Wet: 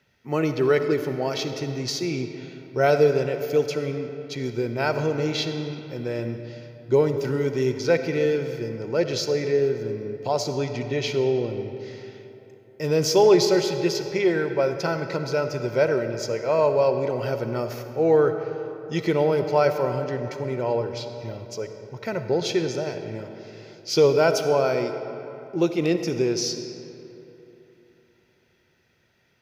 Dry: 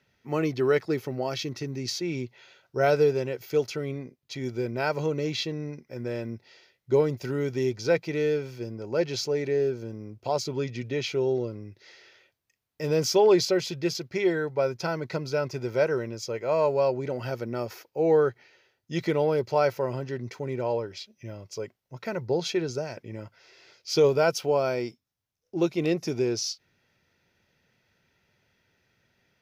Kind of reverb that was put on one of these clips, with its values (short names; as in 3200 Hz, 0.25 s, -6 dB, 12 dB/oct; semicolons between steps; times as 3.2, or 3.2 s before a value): digital reverb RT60 3.2 s, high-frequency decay 0.6×, pre-delay 25 ms, DRR 7.5 dB; gain +3 dB